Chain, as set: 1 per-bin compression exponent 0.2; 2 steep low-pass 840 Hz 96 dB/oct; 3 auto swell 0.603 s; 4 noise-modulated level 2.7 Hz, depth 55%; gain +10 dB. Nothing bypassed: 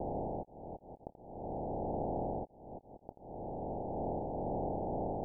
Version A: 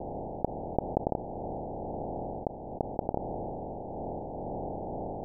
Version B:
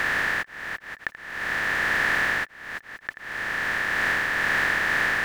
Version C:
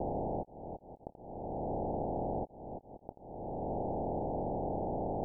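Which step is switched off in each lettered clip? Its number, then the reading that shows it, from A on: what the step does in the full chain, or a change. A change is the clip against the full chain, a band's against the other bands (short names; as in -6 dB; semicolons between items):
3, crest factor change +12.0 dB; 2, 1 kHz band +8.5 dB; 4, loudness change +1.5 LU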